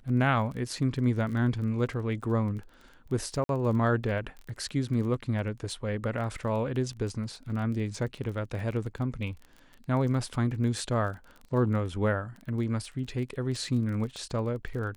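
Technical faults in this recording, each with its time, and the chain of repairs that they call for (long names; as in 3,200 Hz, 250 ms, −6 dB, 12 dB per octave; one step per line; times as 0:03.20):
surface crackle 24 per second −37 dBFS
0:03.44–0:03.49: drop-out 52 ms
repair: click removal
repair the gap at 0:03.44, 52 ms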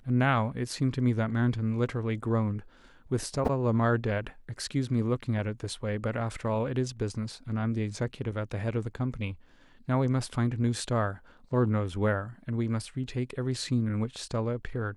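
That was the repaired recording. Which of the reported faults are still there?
none of them is left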